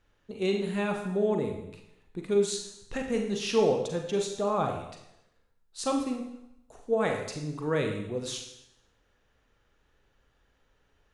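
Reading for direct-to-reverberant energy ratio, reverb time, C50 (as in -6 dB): 2.5 dB, 0.80 s, 6.0 dB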